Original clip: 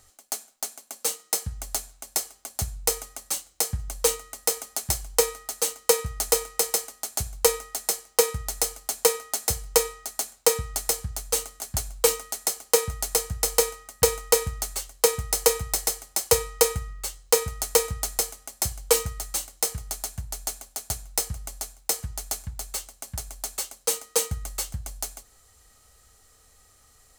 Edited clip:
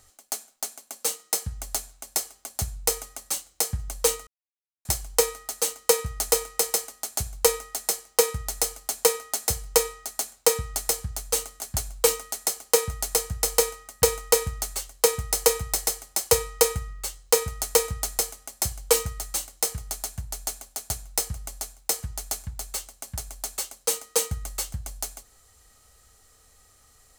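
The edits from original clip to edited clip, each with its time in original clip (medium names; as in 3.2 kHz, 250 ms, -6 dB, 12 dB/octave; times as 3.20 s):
4.27–4.85 s: mute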